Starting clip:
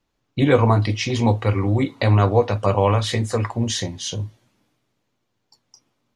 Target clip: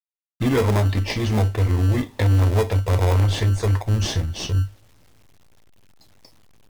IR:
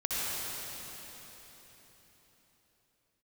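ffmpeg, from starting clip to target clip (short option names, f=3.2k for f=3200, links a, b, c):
-filter_complex "[0:a]asubboost=boost=11.5:cutoff=69,asplit=2[a][b];[b]acrusher=samples=28:mix=1:aa=0.000001,volume=-3.5dB[c];[a][c]amix=inputs=2:normalize=0,asoftclip=type=tanh:threshold=-11dB,acrusher=bits=8:mix=0:aa=0.000001,asetrate=40517,aresample=44100,volume=-2.5dB"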